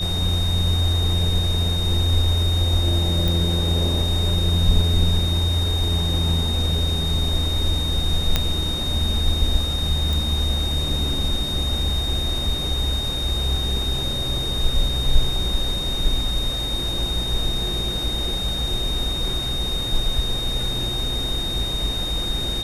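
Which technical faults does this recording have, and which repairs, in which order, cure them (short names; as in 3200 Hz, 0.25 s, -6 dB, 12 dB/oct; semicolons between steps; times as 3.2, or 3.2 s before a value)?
tone 3700 Hz -25 dBFS
3.28 pop
8.36 pop -3 dBFS
10.13 pop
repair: de-click; notch 3700 Hz, Q 30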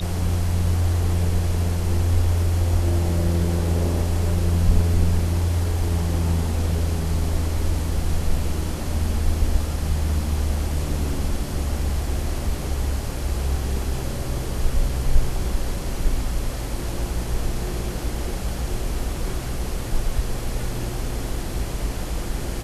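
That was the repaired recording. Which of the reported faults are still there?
none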